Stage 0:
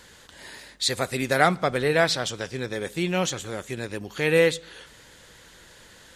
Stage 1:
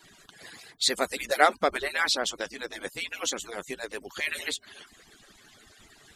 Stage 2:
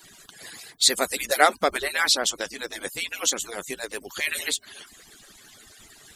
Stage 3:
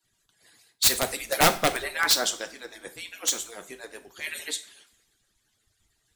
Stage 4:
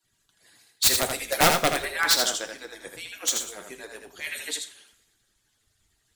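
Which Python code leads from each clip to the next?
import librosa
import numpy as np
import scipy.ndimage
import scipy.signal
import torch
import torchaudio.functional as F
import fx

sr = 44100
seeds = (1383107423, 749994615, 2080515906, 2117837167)

y1 = fx.hpss_only(x, sr, part='percussive')
y2 = fx.high_shelf(y1, sr, hz=6400.0, db=11.5)
y2 = y2 * 10.0 ** (2.0 / 20.0)
y3 = (np.mod(10.0 ** (10.5 / 20.0) * y2 + 1.0, 2.0) - 1.0) / 10.0 ** (10.5 / 20.0)
y3 = fx.rev_double_slope(y3, sr, seeds[0], early_s=0.45, late_s=2.4, knee_db=-21, drr_db=7.0)
y3 = fx.band_widen(y3, sr, depth_pct=70)
y3 = y3 * 10.0 ** (-5.0 / 20.0)
y4 = y3 + 10.0 ** (-5.5 / 20.0) * np.pad(y3, (int(81 * sr / 1000.0), 0))[:len(y3)]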